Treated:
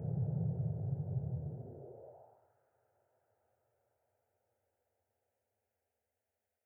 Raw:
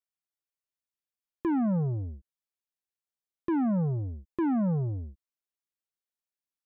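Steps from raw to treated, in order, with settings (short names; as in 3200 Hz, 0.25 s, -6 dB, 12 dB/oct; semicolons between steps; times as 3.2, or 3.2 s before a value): Paulstretch 24×, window 1.00 s, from 5.06; fixed phaser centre 1100 Hz, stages 6; high-pass sweep 160 Hz -> 1500 Hz, 1.44–2.54; gain +1 dB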